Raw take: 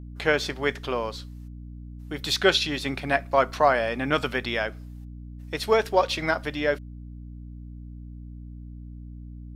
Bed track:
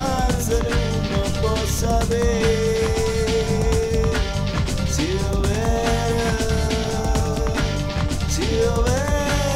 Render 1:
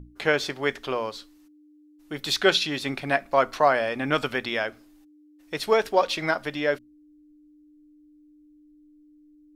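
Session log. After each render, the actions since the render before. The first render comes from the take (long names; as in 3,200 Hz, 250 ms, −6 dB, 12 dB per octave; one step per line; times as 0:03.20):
mains-hum notches 60/120/180/240 Hz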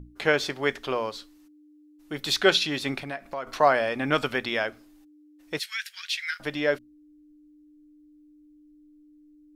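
0:03.03–0:03.47: downward compressor 2.5 to 1, threshold −35 dBFS
0:05.59–0:06.40: Butterworth high-pass 1,600 Hz 48 dB per octave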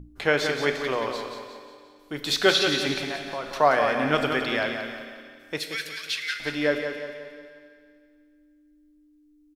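on a send: repeating echo 178 ms, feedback 45%, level −7 dB
on the sum: four-comb reverb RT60 2.1 s, combs from 27 ms, DRR 7.5 dB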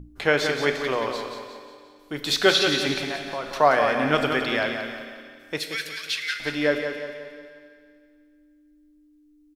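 level +1.5 dB
brickwall limiter −3 dBFS, peak gain reduction 1 dB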